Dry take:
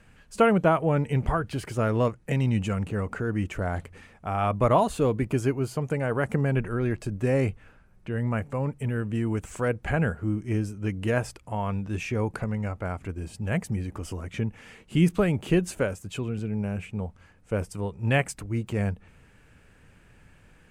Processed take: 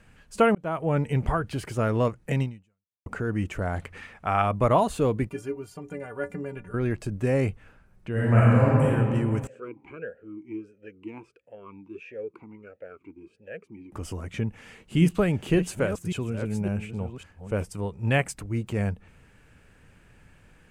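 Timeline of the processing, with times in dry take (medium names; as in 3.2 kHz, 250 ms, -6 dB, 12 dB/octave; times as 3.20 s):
0.55–0.96 s: fade in
2.42–3.06 s: fade out exponential
3.82–4.42 s: peaking EQ 1.9 kHz +8.5 dB 2.6 oct
5.29–6.74 s: inharmonic resonator 86 Hz, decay 0.28 s, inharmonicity 0.03
8.12–8.88 s: reverb throw, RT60 2.3 s, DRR -8.5 dB
9.47–13.92 s: talking filter e-u 1.5 Hz
14.46–17.63 s: chunks repeated in reverse 555 ms, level -10 dB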